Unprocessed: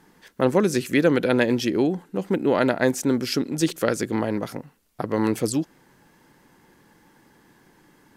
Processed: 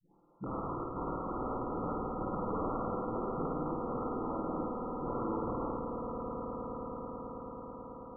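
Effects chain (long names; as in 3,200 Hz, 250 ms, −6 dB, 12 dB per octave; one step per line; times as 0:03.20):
every frequency bin delayed by itself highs late, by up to 861 ms
parametric band 74 Hz −9 dB 0.55 octaves
harmonic and percussive parts rebalanced harmonic −13 dB
flanger 0.44 Hz, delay 5.3 ms, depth 5.3 ms, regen +75%
wrap-around overflow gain 31 dB
linear-phase brick-wall low-pass 1,400 Hz
echo that builds up and dies away 109 ms, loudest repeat 8, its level −10 dB
dynamic equaliser 730 Hz, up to −5 dB, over −55 dBFS, Q 2.5
flutter between parallel walls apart 9 metres, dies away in 1.3 s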